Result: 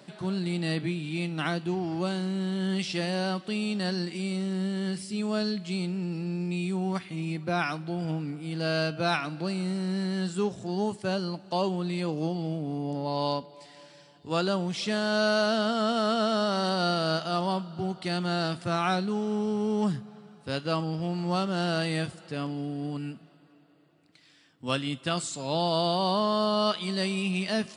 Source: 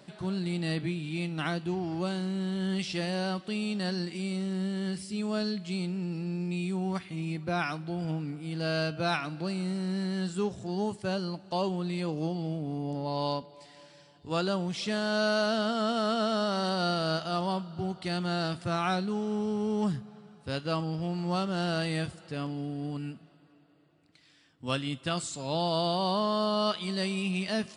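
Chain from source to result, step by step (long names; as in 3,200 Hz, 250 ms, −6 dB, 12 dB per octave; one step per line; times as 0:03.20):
high-pass filter 120 Hz
level +2.5 dB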